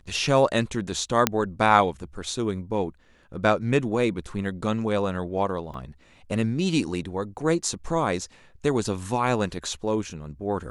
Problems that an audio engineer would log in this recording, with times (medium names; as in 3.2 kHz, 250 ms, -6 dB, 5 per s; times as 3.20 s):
1.27 s: pop -2 dBFS
5.74 s: dropout 3.1 ms